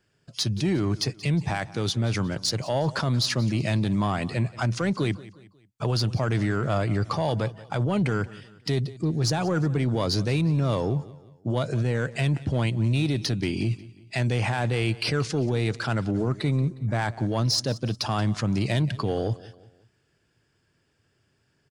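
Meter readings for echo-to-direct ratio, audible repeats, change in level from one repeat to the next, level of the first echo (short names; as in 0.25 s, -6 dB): -18.0 dB, 3, -7.5 dB, -19.0 dB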